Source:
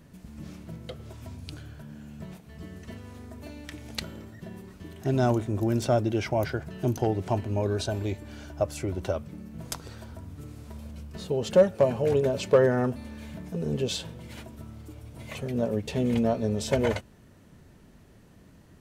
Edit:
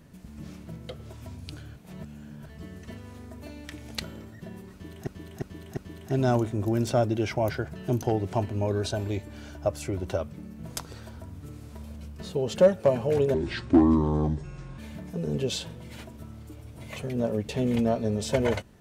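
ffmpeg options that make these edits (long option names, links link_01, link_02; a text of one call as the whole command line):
ffmpeg -i in.wav -filter_complex "[0:a]asplit=8[link_01][link_02][link_03][link_04][link_05][link_06][link_07][link_08];[link_01]atrim=end=1.762[link_09];[link_02]atrim=start=1.758:end=2.492,asetpts=PTS-STARTPTS,areverse[link_10];[link_03]atrim=start=2.488:end=5.072[link_11];[link_04]atrim=start=4.718:end=5.072[link_12];[link_05]atrim=start=4.718:end=5.072[link_13];[link_06]atrim=start=4.718:end=12.294[link_14];[link_07]atrim=start=12.29:end=13.17,asetpts=PTS-STARTPTS,asetrate=26901,aresample=44100[link_15];[link_08]atrim=start=13.166[link_16];[link_09][link_10]acrossfade=duration=0.004:curve1=hsin:curve2=hsin[link_17];[link_17][link_11]acrossfade=duration=0.004:curve1=hsin:curve2=hsin[link_18];[link_18][link_12]acrossfade=duration=0.004:curve1=hsin:curve2=hsin[link_19];[link_19][link_13]acrossfade=duration=0.004:curve1=hsin:curve2=hsin[link_20];[link_20][link_14]acrossfade=duration=0.004:curve1=hsin:curve2=hsin[link_21];[link_21][link_15]acrossfade=duration=0.004:curve1=hsin:curve2=hsin[link_22];[link_22][link_16]acrossfade=duration=0.004:curve1=hsin:curve2=hsin" out.wav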